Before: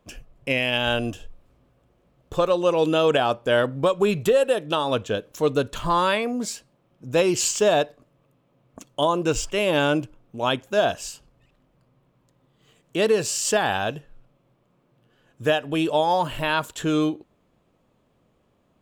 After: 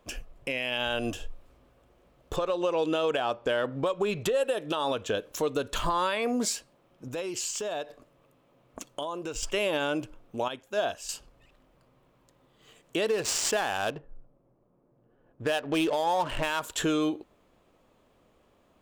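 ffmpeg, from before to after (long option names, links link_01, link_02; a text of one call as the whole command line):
ffmpeg -i in.wav -filter_complex "[0:a]asettb=1/sr,asplit=3[link_01][link_02][link_03];[link_01]atrim=end=2.364[link_04];[link_02]atrim=start=2.36:end=4.35,asetpts=PTS-STARTPTS,afade=type=in:duration=0.004:curve=qsin,afade=type=out:start_time=1.986:duration=0.004:curve=qsin,adynamicsmooth=sensitivity=4.5:basefreq=6200[link_05];[link_03]atrim=start=4.346[link_06];[link_04][link_05]acrossfade=duration=0.004:curve1=hsin:curve2=qsin[link_07];[link_07][link_06]acrossfade=duration=0.004:curve1=qsin:curve2=hsin,asettb=1/sr,asplit=3[link_08][link_09][link_10];[link_08]atrim=end=7.084[link_11];[link_09]atrim=start=7.08:end=9.43,asetpts=PTS-STARTPTS,afade=type=in:duration=0.004:curve=qsin,afade=type=out:start_time=2.346:duration=0.004:curve=qsin,acompressor=threshold=-34dB:ratio=6:attack=3.2:release=140:knee=1:detection=peak[link_12];[link_10]atrim=start=9.426[link_13];[link_11][link_12]acrossfade=duration=0.004:curve1=hsin:curve2=qsin[link_14];[link_14][link_13]acrossfade=duration=0.004:curve1=qsin:curve2=hsin,asettb=1/sr,asplit=3[link_15][link_16][link_17];[link_15]atrim=end=13.094[link_18];[link_16]atrim=start=13.09:end=16.61,asetpts=PTS-STARTPTS,afade=type=in:duration=0.004:curve=qsin,afade=type=out:start_time=3.516:duration=0.004:curve=qsin,adynamicsmooth=sensitivity=7.5:basefreq=710[link_19];[link_17]atrim=start=16.606[link_20];[link_18][link_19]acrossfade=duration=0.004:curve1=hsin:curve2=qsin[link_21];[link_21][link_20]acrossfade=duration=0.004:curve1=qsin:curve2=hsin,asplit=3[link_22][link_23][link_24];[link_22]atrim=end=10.482[link_25];[link_23]atrim=start=10.478:end=11.092,asetpts=PTS-STARTPTS,volume=-10.5dB[link_26];[link_24]atrim=start=11.088[link_27];[link_25][link_26]acrossfade=duration=0.004:curve1=hsin:curve2=hsin[link_28];[link_28][link_27]acrossfade=duration=0.004:curve1=hsin:curve2=hsin,acompressor=threshold=-22dB:ratio=6,equalizer=frequency=140:width_type=o:width=1.6:gain=-8.5,alimiter=limit=-21.5dB:level=0:latency=1:release=195,volume=3.5dB" out.wav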